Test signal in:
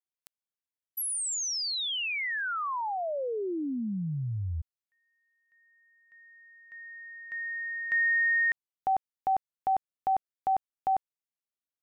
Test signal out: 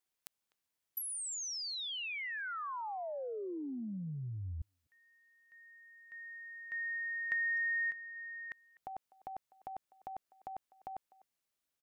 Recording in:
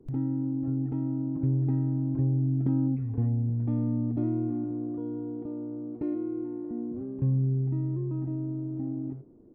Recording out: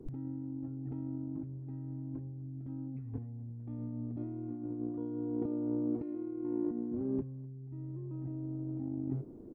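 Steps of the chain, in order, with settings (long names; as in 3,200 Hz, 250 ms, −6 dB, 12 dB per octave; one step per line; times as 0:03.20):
brickwall limiter −26.5 dBFS
compressor whose output falls as the input rises −37 dBFS, ratio −0.5
far-end echo of a speakerphone 250 ms, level −21 dB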